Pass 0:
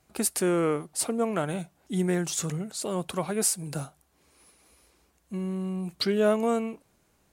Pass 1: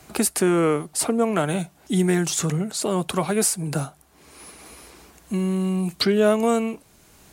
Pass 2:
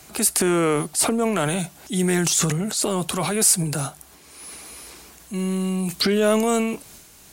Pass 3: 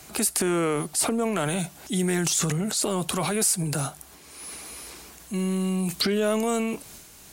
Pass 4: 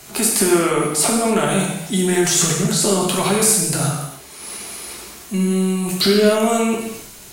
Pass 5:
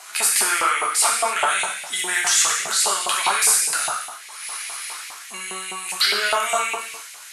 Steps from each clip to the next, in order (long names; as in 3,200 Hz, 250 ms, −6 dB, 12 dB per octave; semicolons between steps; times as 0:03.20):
notch filter 530 Hz, Q 12; multiband upward and downward compressor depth 40%; level +6.5 dB
high-shelf EQ 2,400 Hz +8 dB; transient designer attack −5 dB, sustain +7 dB; level −1 dB
downward compressor 2 to 1, threshold −24 dBFS, peak gain reduction 6.5 dB
reverb whose tail is shaped and stops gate 340 ms falling, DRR −2.5 dB; level +4 dB
auto-filter high-pass saw up 4.9 Hz 840–2,300 Hz; soft clipping −7 dBFS, distortion −23 dB; MP2 128 kbit/s 44,100 Hz